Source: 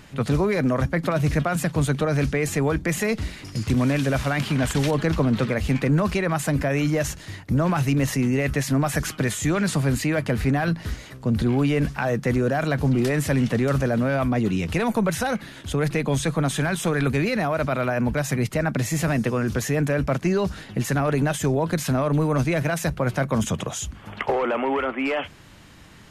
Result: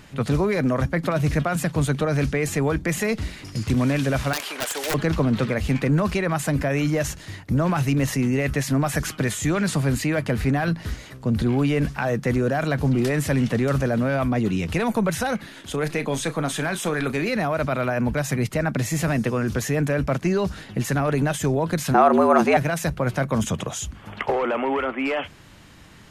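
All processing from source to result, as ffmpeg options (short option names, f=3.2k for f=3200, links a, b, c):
-filter_complex "[0:a]asettb=1/sr,asplit=3[a][b][c];[a]atrim=end=4.334[d];[b]atrim=start=4.33:end=4.94,asetpts=PTS-STARTPTS,afade=t=in:d=0.004:c=qsin,afade=t=out:st=0.606:d=0.004:c=qsin,highpass=f=430:w=0.5412,highpass=f=430:w=1.3066,highshelf=f=12k:g=11,aeval=exprs='(mod(8.41*val(0)+1,2)-1)/8.41':c=same[e];[c]atrim=start=4.936[f];[d][e]acrossfade=d=0.004:c1=hsin:c2=qsin[g];[g][f]acrossfade=d=0.004:c1=qsin:c2=hsin,asettb=1/sr,asplit=3[h][i][j];[h]atrim=end=15.464[k];[i]atrim=start=15.46:end=17.29,asetpts=PTS-STARTPTS,afade=t=in:d=0.004:c=qsin,afade=t=out:st=1.826:d=0.004:c=qsin,equalizer=f=75:t=o:w=1.5:g=-15,asplit=2[l][m];[m]adelay=33,volume=-13dB[n];[l][n]amix=inputs=2:normalize=0,atrim=end_sample=80703[o];[j]atrim=start=17.286[p];[k][o]acrossfade=d=0.004:c1=hsin:c2=qsin[q];[q][p]acrossfade=d=0.004:c1=qsin:c2=hsin,asettb=1/sr,asplit=3[r][s][t];[r]atrim=end=21.944[u];[s]atrim=start=21.94:end=22.57,asetpts=PTS-STARTPTS,afade=t=in:d=0.004:c=qsin,afade=t=out:st=0.626:d=0.004:c=qsin,equalizer=f=890:t=o:w=2.3:g=11,afreqshift=95[v];[t]atrim=start=22.566[w];[u][v]acrossfade=d=0.004:c1=hsin:c2=qsin[x];[x][w]acrossfade=d=0.004:c1=qsin:c2=hsin"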